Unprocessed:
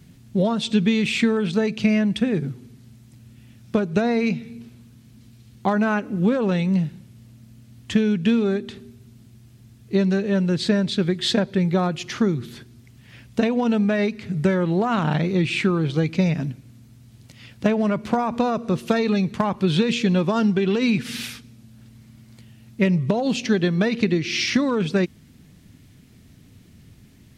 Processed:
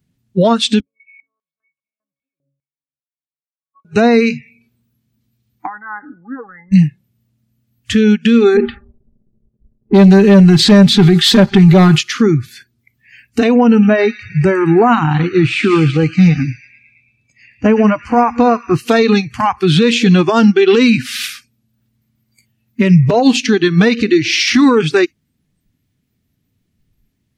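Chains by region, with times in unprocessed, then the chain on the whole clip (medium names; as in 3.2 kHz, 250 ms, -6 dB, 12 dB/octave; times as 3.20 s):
0.80–3.85 s: pitch-class resonator C#, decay 0.51 s + step-sequenced band-pass 5 Hz 540–6800 Hz
5.66–6.72 s: brick-wall FIR low-pass 2.1 kHz + compression 10:1, threshold -27 dBFS
8.57–12.01 s: waveshaping leveller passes 2 + level-controlled noise filter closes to 390 Hz, open at -14.5 dBFS + comb 5 ms, depth 55%
13.58–18.75 s: treble shelf 2.3 kHz -8.5 dB + feedback echo behind a high-pass 111 ms, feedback 73%, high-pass 2.3 kHz, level -5.5 dB
whole clip: spectral noise reduction 25 dB; loudness maximiser +16.5 dB; upward expansion 1.5:1, over -20 dBFS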